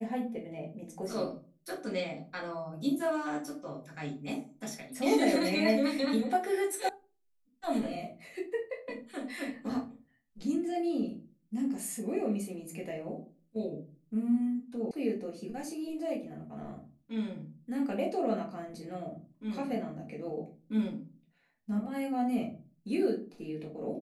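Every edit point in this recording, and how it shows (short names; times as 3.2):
6.89 sound cut off
14.91 sound cut off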